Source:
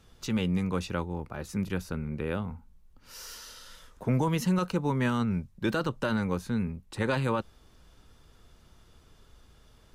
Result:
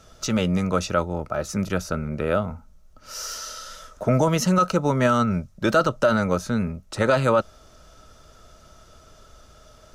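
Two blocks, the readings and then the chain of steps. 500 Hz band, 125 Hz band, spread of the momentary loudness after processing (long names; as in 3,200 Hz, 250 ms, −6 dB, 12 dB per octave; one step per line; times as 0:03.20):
+11.0 dB, +5.0 dB, 13 LU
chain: parametric band 6,000 Hz +9 dB 0.69 octaves
hollow resonant body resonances 620/1,300 Hz, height 15 dB, ringing for 35 ms
boost into a limiter +12.5 dB
level −7.5 dB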